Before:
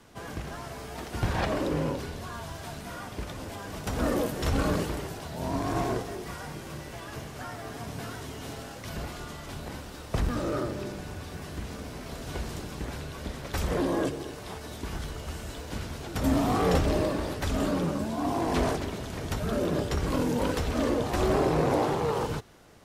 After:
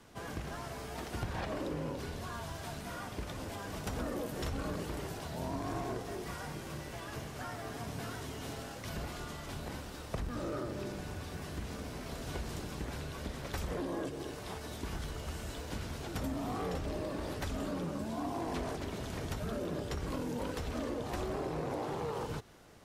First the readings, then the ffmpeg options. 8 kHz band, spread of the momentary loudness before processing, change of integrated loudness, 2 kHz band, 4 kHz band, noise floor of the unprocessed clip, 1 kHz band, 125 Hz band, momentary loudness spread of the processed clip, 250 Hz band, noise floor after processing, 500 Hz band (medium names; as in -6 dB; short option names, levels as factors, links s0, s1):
-6.5 dB, 13 LU, -8.5 dB, -7.0 dB, -6.5 dB, -42 dBFS, -8.5 dB, -8.0 dB, 5 LU, -9.0 dB, -45 dBFS, -9.0 dB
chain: -af "acompressor=threshold=0.0282:ratio=6,volume=0.708"